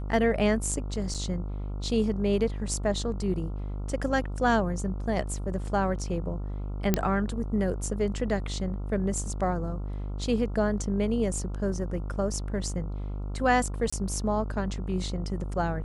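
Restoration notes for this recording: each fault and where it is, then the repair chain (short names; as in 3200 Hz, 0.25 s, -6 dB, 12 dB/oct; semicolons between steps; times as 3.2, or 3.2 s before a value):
buzz 50 Hz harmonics 28 -33 dBFS
1.14–1.15 gap 6.6 ms
6.94 pop -8 dBFS
13.9–13.93 gap 25 ms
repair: de-click; de-hum 50 Hz, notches 28; interpolate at 1.14, 6.6 ms; interpolate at 13.9, 25 ms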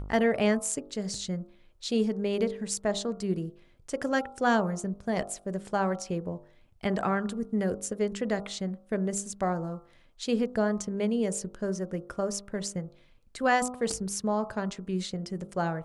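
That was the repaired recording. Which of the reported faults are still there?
none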